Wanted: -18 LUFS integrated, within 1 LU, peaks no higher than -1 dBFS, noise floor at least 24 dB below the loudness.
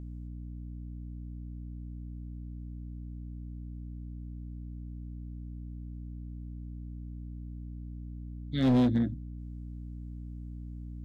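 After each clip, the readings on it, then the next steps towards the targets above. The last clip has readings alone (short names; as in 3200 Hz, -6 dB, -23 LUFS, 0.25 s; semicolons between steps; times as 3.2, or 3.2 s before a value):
clipped 0.6%; flat tops at -20.0 dBFS; hum 60 Hz; harmonics up to 300 Hz; hum level -38 dBFS; loudness -37.0 LUFS; peak -20.0 dBFS; loudness target -18.0 LUFS
-> clip repair -20 dBFS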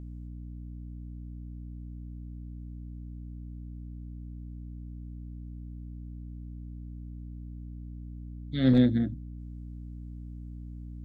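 clipped 0.0%; hum 60 Hz; harmonics up to 300 Hz; hum level -38 dBFS
-> notches 60/120/180/240/300 Hz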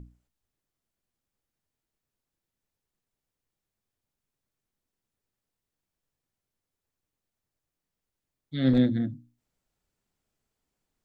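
hum none; loudness -25.5 LUFS; peak -13.0 dBFS; loudness target -18.0 LUFS
-> gain +7.5 dB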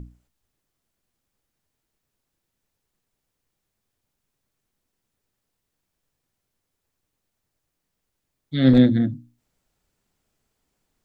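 loudness -18.0 LUFS; peak -5.5 dBFS; noise floor -80 dBFS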